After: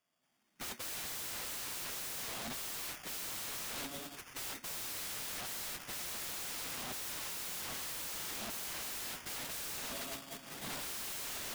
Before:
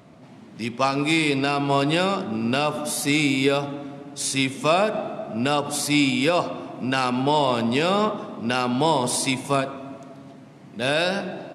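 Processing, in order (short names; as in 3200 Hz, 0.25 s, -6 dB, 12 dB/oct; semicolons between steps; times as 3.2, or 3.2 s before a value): recorder AGC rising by 14 dB/s; notch 980 Hz, Q 27; in parallel at +0.5 dB: limiter -13 dBFS, peak gain reduction 6.5 dB; on the sum: overdrive pedal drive 33 dB, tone 2400 Hz, clips at -2.5 dBFS; bell 67 Hz -4 dB 2.5 oct; darkening echo 0.425 s, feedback 34%, low-pass 2500 Hz, level -24 dB; sample-and-hold 11×; passive tone stack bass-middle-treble 5-5-5; gate -22 dBFS, range -57 dB; wrapped overs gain 46.5 dB; gain +9.5 dB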